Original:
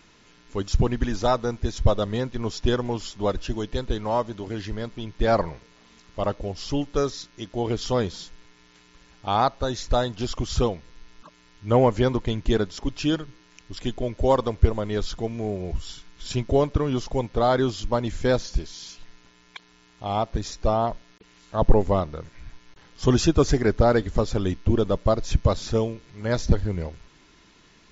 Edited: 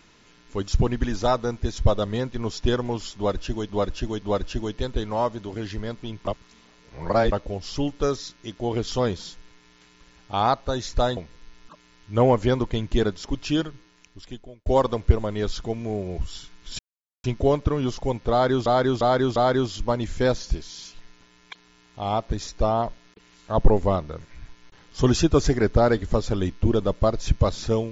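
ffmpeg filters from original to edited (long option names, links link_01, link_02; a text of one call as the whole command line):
ffmpeg -i in.wav -filter_complex "[0:a]asplit=11[link_01][link_02][link_03][link_04][link_05][link_06][link_07][link_08][link_09][link_10][link_11];[link_01]atrim=end=3.692[link_12];[link_02]atrim=start=3.158:end=3.692[link_13];[link_03]atrim=start=3.158:end=5.192[link_14];[link_04]atrim=start=5.188:end=6.262,asetpts=PTS-STARTPTS,areverse[link_15];[link_05]atrim=start=6.258:end=10.112[link_16];[link_06]atrim=start=10.708:end=14.2,asetpts=PTS-STARTPTS,afade=type=out:start_time=2.482:duration=1.01[link_17];[link_07]atrim=start=14.2:end=16.33,asetpts=PTS-STARTPTS,afade=type=in:duration=0.004:curve=hsin,afade=type=out:start_time=2.126:duration=0.004:curve=hsin,apad=pad_dur=0.45[link_18];[link_08]atrim=start=16.33:end=17.752,asetpts=PTS-STARTPTS,afade=type=in:duration=0.004:curve=hsin[link_19];[link_09]atrim=start=17.398:end=17.752[link_20];[link_10]atrim=start=17.398:end=17.752[link_21];[link_11]atrim=start=17.398[link_22];[link_12][link_13]acrossfade=duration=0.004:curve1=hsin:curve2=hsin[link_23];[link_23][link_14]acrossfade=duration=0.004:curve1=hsin:curve2=hsin[link_24];[link_24][link_15]acrossfade=duration=0.004:curve1=hsin:curve2=hsin[link_25];[link_25][link_16]acrossfade=duration=0.004:curve1=hsin:curve2=hsin[link_26];[link_17][link_18][link_19]concat=n=3:v=0:a=1[link_27];[link_26][link_27]acrossfade=duration=0.004:curve1=hsin:curve2=hsin[link_28];[link_28][link_20]acrossfade=duration=0.004:curve1=hsin:curve2=hsin[link_29];[link_29][link_21]acrossfade=duration=0.004:curve1=hsin:curve2=hsin[link_30];[link_30][link_22]acrossfade=duration=0.004:curve1=hsin:curve2=hsin" out.wav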